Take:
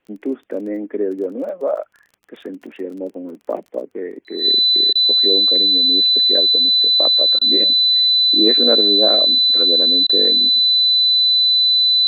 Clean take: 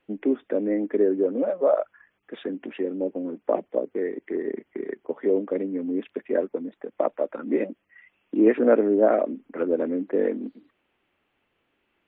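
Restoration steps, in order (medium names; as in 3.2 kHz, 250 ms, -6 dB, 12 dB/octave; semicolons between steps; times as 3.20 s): de-click; band-stop 4 kHz, Q 30; interpolate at 4.93/7.39/10.07 s, 22 ms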